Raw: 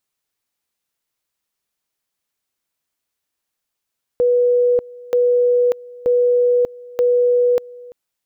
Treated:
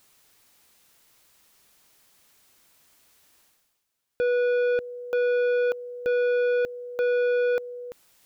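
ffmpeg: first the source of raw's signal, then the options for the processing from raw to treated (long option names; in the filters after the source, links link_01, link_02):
-f lavfi -i "aevalsrc='pow(10,(-11.5-22.5*gte(mod(t,0.93),0.59))/20)*sin(2*PI*489*t)':duration=3.72:sample_rate=44100"
-af "asoftclip=type=tanh:threshold=-21.5dB,areverse,acompressor=mode=upward:threshold=-44dB:ratio=2.5,areverse"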